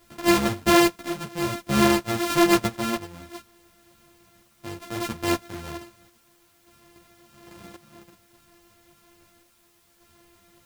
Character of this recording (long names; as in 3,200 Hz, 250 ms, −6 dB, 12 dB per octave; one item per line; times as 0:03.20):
a buzz of ramps at a fixed pitch in blocks of 128 samples
chopped level 0.6 Hz, depth 60%, duty 65%
a quantiser's noise floor 10 bits, dither triangular
a shimmering, thickened sound